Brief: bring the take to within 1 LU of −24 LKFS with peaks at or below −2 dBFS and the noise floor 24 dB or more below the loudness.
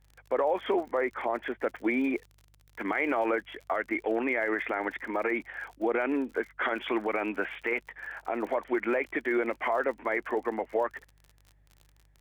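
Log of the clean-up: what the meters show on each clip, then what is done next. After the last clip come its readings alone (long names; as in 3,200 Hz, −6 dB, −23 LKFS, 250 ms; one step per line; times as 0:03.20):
crackle rate 53 per second; mains hum 50 Hz; hum harmonics up to 150 Hz; level of the hum −60 dBFS; integrated loudness −30.5 LKFS; sample peak −16.0 dBFS; target loudness −24.0 LKFS
→ click removal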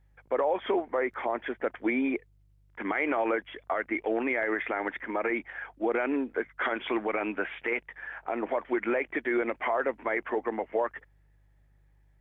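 crackle rate 0.16 per second; mains hum 50 Hz; hum harmonics up to 150 Hz; level of the hum −61 dBFS
→ hum removal 50 Hz, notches 3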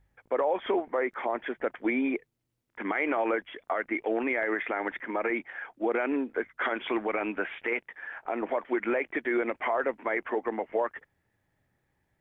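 mains hum none found; integrated loudness −30.5 LKFS; sample peak −16.0 dBFS; target loudness −24.0 LKFS
→ level +6.5 dB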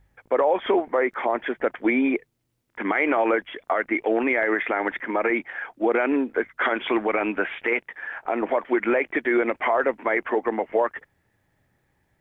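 integrated loudness −24.0 LKFS; sample peak −9.5 dBFS; background noise floor −72 dBFS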